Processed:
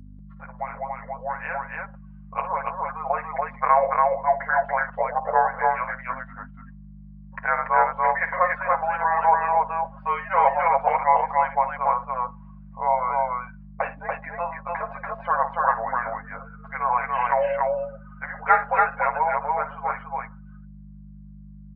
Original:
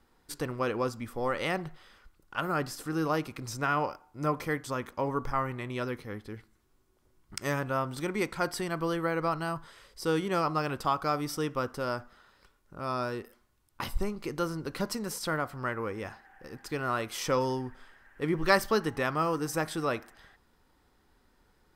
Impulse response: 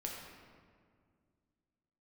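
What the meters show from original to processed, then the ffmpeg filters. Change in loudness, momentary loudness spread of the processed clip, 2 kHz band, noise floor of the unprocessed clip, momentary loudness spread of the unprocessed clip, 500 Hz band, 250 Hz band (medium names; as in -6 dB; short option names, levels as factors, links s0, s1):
+8.0 dB, 14 LU, +7.5 dB, -68 dBFS, 11 LU, +5.0 dB, -9.5 dB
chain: -af "afftfilt=real='re*(1-between(b*sr/4096,110,790))':imag='im*(1-between(b*sr/4096,110,790))':win_size=4096:overlap=0.75,highpass=f=160:t=q:w=0.5412,highpass=f=160:t=q:w=1.307,lowpass=f=2600:t=q:w=0.5176,lowpass=f=2600:t=q:w=0.7071,lowpass=f=2600:t=q:w=1.932,afreqshift=-350,afftdn=nr=19:nf=-47,aecho=1:1:7.3:0.89,dynaudnorm=f=460:g=13:m=3.16,aeval=exprs='val(0)+0.01*(sin(2*PI*50*n/s)+sin(2*PI*2*50*n/s)/2+sin(2*PI*3*50*n/s)/3+sin(2*PI*4*50*n/s)/4+sin(2*PI*5*50*n/s)/5)':c=same,highpass=f=60:p=1,aecho=1:1:55.39|285.7:0.251|0.794"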